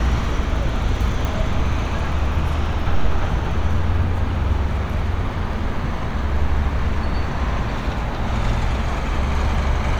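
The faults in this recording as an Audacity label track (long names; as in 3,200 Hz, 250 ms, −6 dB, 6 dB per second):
1.250000	1.250000	click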